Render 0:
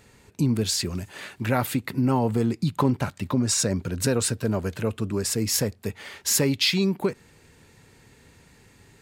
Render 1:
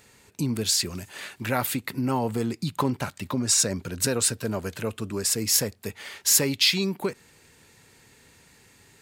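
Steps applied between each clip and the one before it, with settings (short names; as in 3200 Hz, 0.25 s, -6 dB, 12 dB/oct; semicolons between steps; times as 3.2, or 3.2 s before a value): tilt +1.5 dB/oct; gain -1 dB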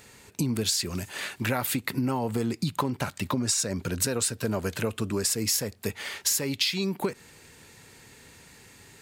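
compressor 10:1, threshold -27 dBFS, peak gain reduction 13 dB; gain +4 dB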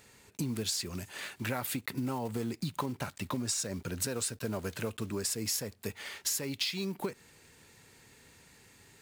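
block floating point 5-bit; gain -7 dB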